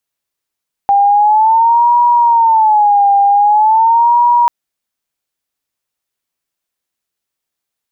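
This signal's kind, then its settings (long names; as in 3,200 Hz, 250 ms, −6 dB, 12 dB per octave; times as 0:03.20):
siren wail 801–960 Hz 0.44 per second sine −6 dBFS 3.59 s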